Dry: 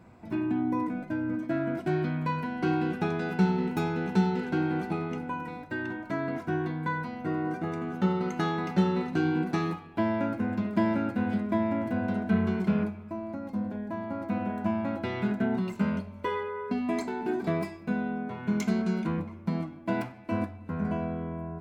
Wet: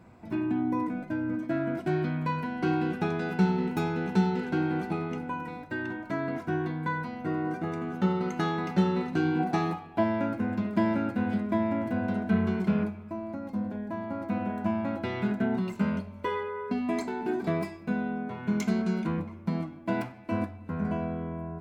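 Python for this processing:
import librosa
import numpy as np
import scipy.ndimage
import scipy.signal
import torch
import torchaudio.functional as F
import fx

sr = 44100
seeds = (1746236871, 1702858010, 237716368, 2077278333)

y = fx.peak_eq(x, sr, hz=750.0, db=10.5, octaves=0.37, at=(9.39, 10.04))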